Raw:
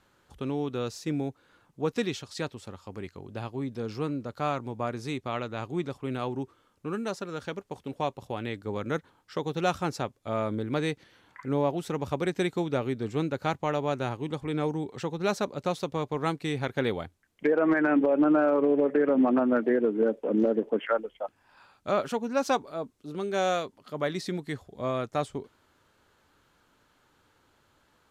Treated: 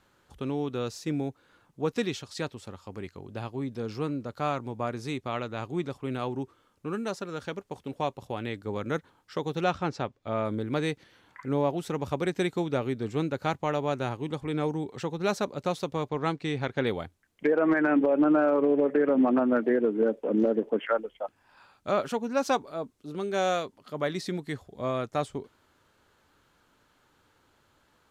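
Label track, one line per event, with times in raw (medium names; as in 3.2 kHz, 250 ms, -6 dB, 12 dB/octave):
9.640000	10.450000	low-pass 4.4 kHz
16.090000	16.870000	low-pass 6.4 kHz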